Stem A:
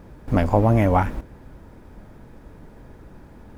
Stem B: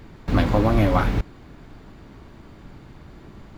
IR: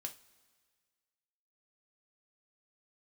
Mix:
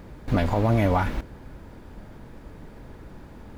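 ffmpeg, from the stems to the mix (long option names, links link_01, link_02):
-filter_complex "[0:a]alimiter=limit=-14dB:level=0:latency=1:release=119,volume=1dB[link_01];[1:a]highpass=1100,volume=-6dB[link_02];[link_01][link_02]amix=inputs=2:normalize=0"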